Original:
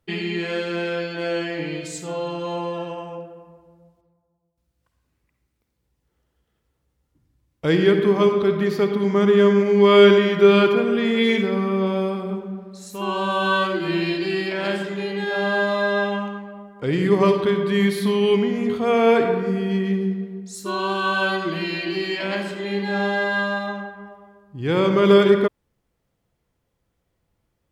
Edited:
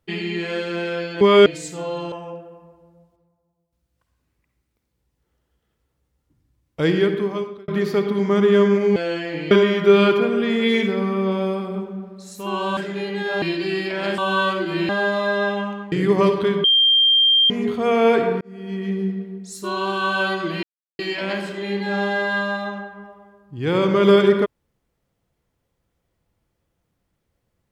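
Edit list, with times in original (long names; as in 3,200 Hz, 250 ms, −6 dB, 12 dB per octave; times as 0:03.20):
0:01.21–0:01.76: swap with 0:09.81–0:10.06
0:02.42–0:02.97: remove
0:07.71–0:08.53: fade out
0:13.32–0:14.03: swap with 0:14.79–0:15.44
0:16.47–0:16.94: remove
0:17.66–0:18.52: beep over 3,180 Hz −12 dBFS
0:19.43–0:20.09: fade in
0:21.65–0:22.01: silence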